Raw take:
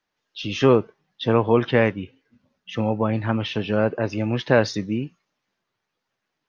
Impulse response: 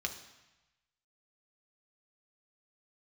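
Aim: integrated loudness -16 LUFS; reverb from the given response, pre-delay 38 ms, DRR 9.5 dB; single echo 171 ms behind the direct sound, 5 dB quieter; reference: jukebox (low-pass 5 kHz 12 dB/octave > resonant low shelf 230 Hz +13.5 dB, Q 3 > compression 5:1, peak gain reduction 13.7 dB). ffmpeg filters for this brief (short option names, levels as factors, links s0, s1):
-filter_complex "[0:a]aecho=1:1:171:0.562,asplit=2[s0][s1];[1:a]atrim=start_sample=2205,adelay=38[s2];[s1][s2]afir=irnorm=-1:irlink=0,volume=0.266[s3];[s0][s3]amix=inputs=2:normalize=0,lowpass=5000,lowshelf=f=230:t=q:w=3:g=13.5,acompressor=threshold=0.178:ratio=5,volume=1.5"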